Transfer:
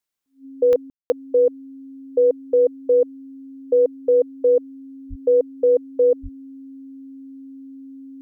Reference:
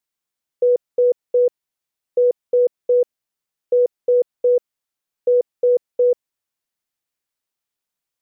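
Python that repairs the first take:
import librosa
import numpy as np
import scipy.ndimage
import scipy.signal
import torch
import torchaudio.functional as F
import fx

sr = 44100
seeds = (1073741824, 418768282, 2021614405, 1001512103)

y = fx.fix_declick_ar(x, sr, threshold=10.0)
y = fx.notch(y, sr, hz=270.0, q=30.0)
y = fx.highpass(y, sr, hz=140.0, slope=24, at=(5.09, 5.21), fade=0.02)
y = fx.highpass(y, sr, hz=140.0, slope=24, at=(6.22, 6.34), fade=0.02)
y = fx.fix_ambience(y, sr, seeds[0], print_start_s=0.0, print_end_s=0.5, start_s=0.9, end_s=1.1)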